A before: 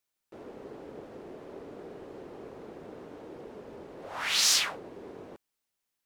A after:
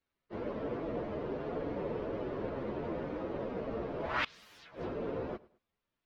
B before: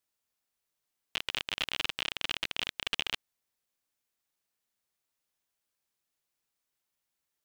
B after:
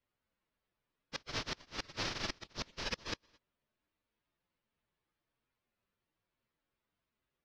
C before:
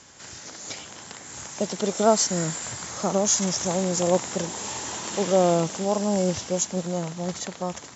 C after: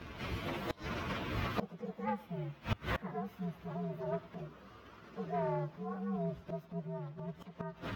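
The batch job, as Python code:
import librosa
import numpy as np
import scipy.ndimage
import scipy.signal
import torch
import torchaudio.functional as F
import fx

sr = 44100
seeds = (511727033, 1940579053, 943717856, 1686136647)

p1 = fx.partial_stretch(x, sr, pct=124)
p2 = fx.low_shelf(p1, sr, hz=310.0, db=3.0)
p3 = fx.notch(p2, sr, hz=780.0, q=12.0)
p4 = p3 + fx.echo_feedback(p3, sr, ms=106, feedback_pct=33, wet_db=-22.0, dry=0)
p5 = np.clip(10.0 ** (15.0 / 20.0) * p4, -1.0, 1.0) / 10.0 ** (15.0 / 20.0)
p6 = fx.gate_flip(p5, sr, shuts_db=-28.0, range_db=-25)
p7 = fx.air_absorb(p6, sr, metres=270.0)
y = p7 * 10.0 ** (11.5 / 20.0)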